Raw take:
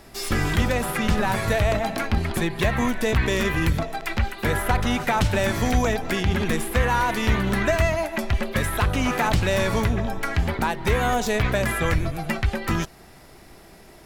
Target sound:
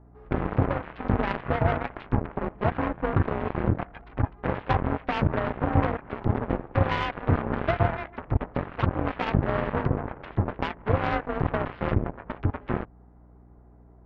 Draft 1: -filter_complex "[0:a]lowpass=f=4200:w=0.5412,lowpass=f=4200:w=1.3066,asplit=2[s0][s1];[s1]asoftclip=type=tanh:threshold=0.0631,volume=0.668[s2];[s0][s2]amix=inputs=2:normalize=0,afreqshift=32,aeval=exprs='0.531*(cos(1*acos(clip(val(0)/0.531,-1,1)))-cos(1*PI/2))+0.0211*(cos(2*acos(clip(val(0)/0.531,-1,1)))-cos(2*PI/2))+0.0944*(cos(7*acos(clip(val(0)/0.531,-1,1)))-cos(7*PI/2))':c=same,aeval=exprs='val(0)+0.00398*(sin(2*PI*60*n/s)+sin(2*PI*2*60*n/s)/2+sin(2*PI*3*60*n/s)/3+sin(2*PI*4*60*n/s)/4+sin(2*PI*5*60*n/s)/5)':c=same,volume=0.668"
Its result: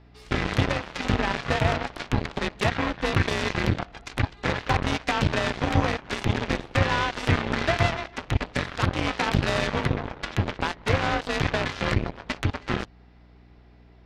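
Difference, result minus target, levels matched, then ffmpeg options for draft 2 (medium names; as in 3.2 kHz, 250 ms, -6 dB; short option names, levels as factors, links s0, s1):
4 kHz band +11.5 dB
-filter_complex "[0:a]lowpass=f=1200:w=0.5412,lowpass=f=1200:w=1.3066,asplit=2[s0][s1];[s1]asoftclip=type=tanh:threshold=0.0631,volume=0.668[s2];[s0][s2]amix=inputs=2:normalize=0,afreqshift=32,aeval=exprs='0.531*(cos(1*acos(clip(val(0)/0.531,-1,1)))-cos(1*PI/2))+0.0211*(cos(2*acos(clip(val(0)/0.531,-1,1)))-cos(2*PI/2))+0.0944*(cos(7*acos(clip(val(0)/0.531,-1,1)))-cos(7*PI/2))':c=same,aeval=exprs='val(0)+0.00398*(sin(2*PI*60*n/s)+sin(2*PI*2*60*n/s)/2+sin(2*PI*3*60*n/s)/3+sin(2*PI*4*60*n/s)/4+sin(2*PI*5*60*n/s)/5)':c=same,volume=0.668"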